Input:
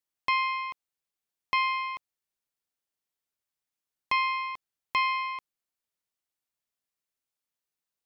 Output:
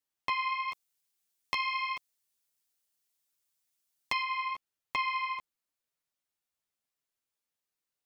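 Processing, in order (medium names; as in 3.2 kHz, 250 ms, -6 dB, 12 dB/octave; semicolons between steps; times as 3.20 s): 0.68–4.23 s: treble shelf 3.4 kHz +11.5 dB; compression, threshold -28 dBFS, peak gain reduction 8.5 dB; flange 1 Hz, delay 6.6 ms, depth 6.1 ms, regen 0%; trim +2.5 dB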